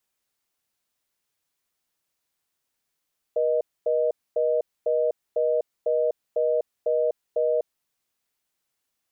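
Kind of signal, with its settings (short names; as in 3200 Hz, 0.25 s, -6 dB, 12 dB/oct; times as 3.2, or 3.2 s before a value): call progress tone reorder tone, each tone -22.5 dBFS 4.36 s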